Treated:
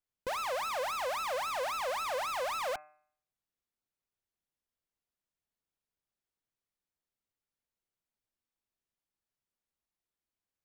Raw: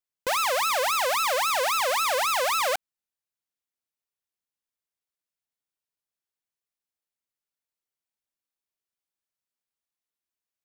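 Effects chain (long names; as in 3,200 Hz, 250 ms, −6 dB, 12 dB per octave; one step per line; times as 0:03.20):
brickwall limiter −29 dBFS, peak gain reduction 9.5 dB
spectral tilt −2 dB per octave
hum removal 151.6 Hz, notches 18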